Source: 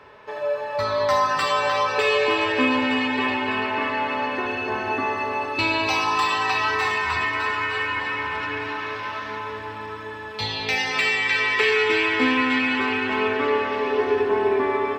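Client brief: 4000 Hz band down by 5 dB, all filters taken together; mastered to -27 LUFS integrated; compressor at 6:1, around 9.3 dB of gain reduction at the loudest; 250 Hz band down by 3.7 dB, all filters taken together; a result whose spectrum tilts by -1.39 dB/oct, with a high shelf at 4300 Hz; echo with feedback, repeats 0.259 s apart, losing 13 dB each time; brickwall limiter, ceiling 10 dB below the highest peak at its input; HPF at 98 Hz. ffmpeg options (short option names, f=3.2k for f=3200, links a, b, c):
-af "highpass=98,equalizer=f=250:t=o:g=-4,equalizer=f=4k:t=o:g=-5.5,highshelf=f=4.3k:g=-3,acompressor=threshold=-28dB:ratio=6,alimiter=level_in=1dB:limit=-24dB:level=0:latency=1,volume=-1dB,aecho=1:1:259|518|777:0.224|0.0493|0.0108,volume=5.5dB"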